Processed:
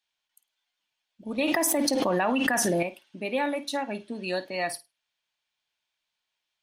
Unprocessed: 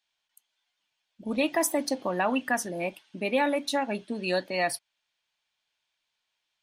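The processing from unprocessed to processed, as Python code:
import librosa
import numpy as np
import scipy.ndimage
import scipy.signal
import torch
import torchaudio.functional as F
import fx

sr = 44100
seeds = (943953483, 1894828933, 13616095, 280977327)

p1 = x + fx.room_flutter(x, sr, wall_m=8.9, rt60_s=0.21, dry=0)
p2 = fx.env_flatten(p1, sr, amount_pct=100, at=(1.38, 2.83))
y = F.gain(torch.from_numpy(p2), -2.5).numpy()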